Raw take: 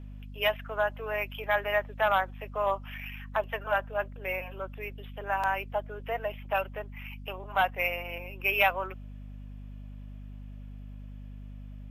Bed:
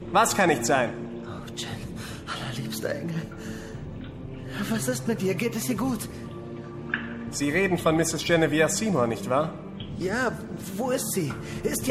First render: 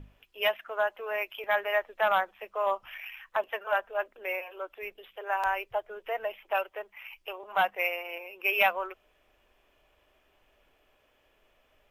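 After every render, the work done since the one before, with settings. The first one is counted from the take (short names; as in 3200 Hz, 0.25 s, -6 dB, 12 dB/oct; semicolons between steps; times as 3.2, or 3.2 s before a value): notches 50/100/150/200/250 Hz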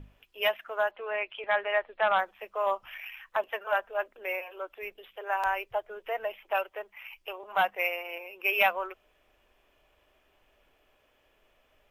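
0.91–2.19 steep low-pass 4500 Hz 48 dB/oct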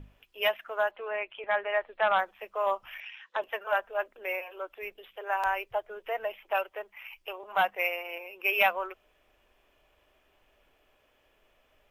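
1.08–1.81 air absorption 210 m; 3–3.42 speaker cabinet 260–6800 Hz, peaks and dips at 490 Hz +7 dB, 700 Hz -7 dB, 1200 Hz -5 dB, 2300 Hz -4 dB, 3600 Hz +7 dB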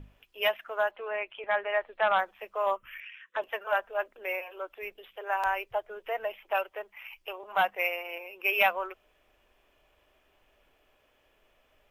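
2.76–3.37 fixed phaser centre 1900 Hz, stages 4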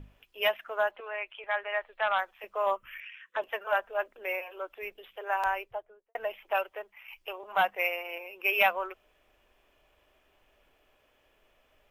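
1–2.44 bell 190 Hz -12 dB 2.9 oct; 5.41–6.15 studio fade out; 6.68–7.08 fade out, to -7 dB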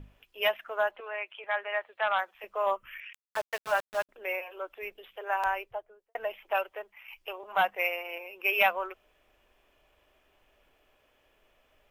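1.23–2.35 HPF 100 Hz 24 dB/oct; 3.13–4.09 sample gate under -36 dBFS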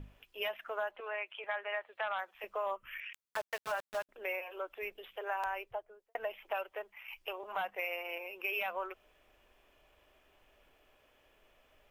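limiter -20.5 dBFS, peak gain reduction 9.5 dB; compressor 2:1, threshold -37 dBFS, peak gain reduction 6.5 dB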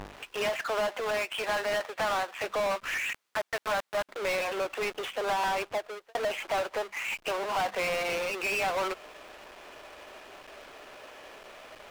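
half-waves squared off; overdrive pedal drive 26 dB, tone 2800 Hz, clips at -22.5 dBFS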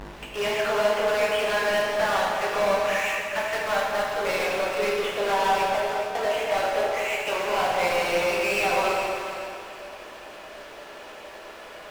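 on a send: echo with dull and thin repeats by turns 0.21 s, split 890 Hz, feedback 56%, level -3.5 dB; on the sum: plate-style reverb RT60 1.7 s, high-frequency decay 0.85×, DRR -3.5 dB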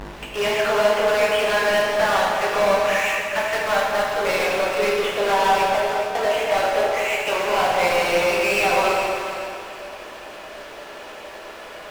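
gain +4.5 dB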